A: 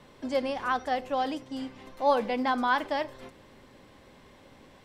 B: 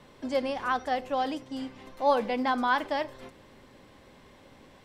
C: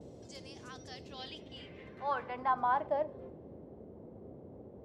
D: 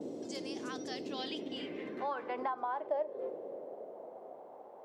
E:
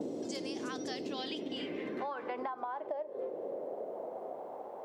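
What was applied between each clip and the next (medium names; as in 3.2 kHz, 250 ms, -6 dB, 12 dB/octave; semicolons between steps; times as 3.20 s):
no audible change
gate with hold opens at -49 dBFS; band-pass sweep 6.7 kHz -> 210 Hz, 0.76–3.91 s; band noise 60–540 Hz -51 dBFS
compression 6:1, threshold -41 dBFS, peak gain reduction 14.5 dB; high-pass sweep 280 Hz -> 820 Hz, 1.93–4.57 s; trim +5.5 dB
compression 6:1, threshold -43 dBFS, peak gain reduction 13.5 dB; trim +7.5 dB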